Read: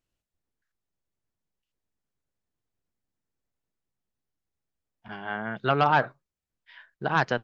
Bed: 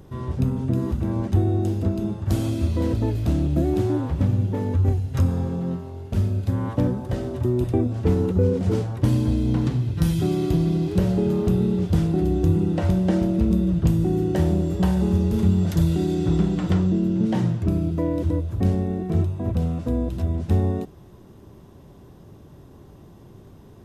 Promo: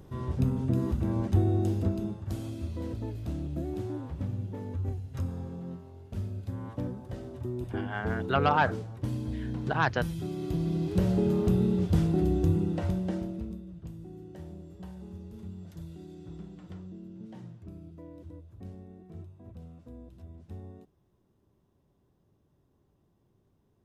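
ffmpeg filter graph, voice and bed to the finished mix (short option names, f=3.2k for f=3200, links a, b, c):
-filter_complex "[0:a]adelay=2650,volume=-3dB[a];[1:a]volume=4dB,afade=t=out:st=1.79:d=0.55:silence=0.375837,afade=t=in:st=10.34:d=0.8:silence=0.375837,afade=t=out:st=12.26:d=1.36:silence=0.112202[b];[a][b]amix=inputs=2:normalize=0"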